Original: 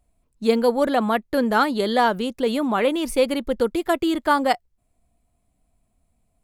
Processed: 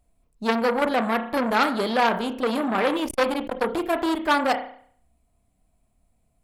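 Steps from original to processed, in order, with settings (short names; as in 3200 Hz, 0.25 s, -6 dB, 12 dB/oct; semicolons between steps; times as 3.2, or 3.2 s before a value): reverb RT60 0.55 s, pre-delay 31 ms, DRR 7.5 dB; core saturation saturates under 1800 Hz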